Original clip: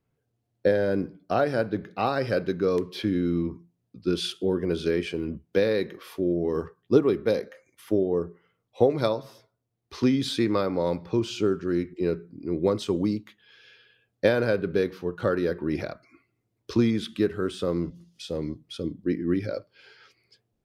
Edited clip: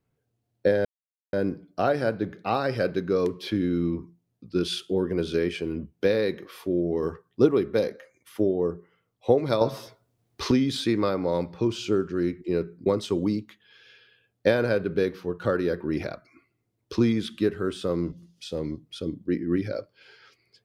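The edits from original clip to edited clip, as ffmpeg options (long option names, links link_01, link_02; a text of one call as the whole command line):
ffmpeg -i in.wav -filter_complex "[0:a]asplit=5[link_01][link_02][link_03][link_04][link_05];[link_01]atrim=end=0.85,asetpts=PTS-STARTPTS,afade=type=out:start_time=0.846:duration=0.004:curve=hsin,apad=pad_dur=0.48[link_06];[link_02]atrim=start=0.85:end=9.132,asetpts=PTS-STARTPTS,afade=type=in:duration=0.004:curve=hsin[link_07];[link_03]atrim=start=9.128:end=10.032,asetpts=PTS-STARTPTS,volume=9.5dB[link_08];[link_04]atrim=start=10.028:end=12.382[link_09];[link_05]atrim=start=12.638[link_10];[link_06][link_07]concat=n=2:v=0:a=1[link_11];[link_11][link_08]acrossfade=duration=0.004:curve1=hsin:curve2=hsin[link_12];[link_12][link_09]acrossfade=duration=0.004:curve1=hsin:curve2=hsin[link_13];[link_13][link_10]acrossfade=duration=0.004:curve1=hsin:curve2=hsin" out.wav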